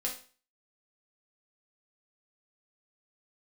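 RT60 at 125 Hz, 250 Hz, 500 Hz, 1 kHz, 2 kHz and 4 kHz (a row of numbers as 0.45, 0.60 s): 0.40, 0.40, 0.40, 0.40, 0.40, 0.40 s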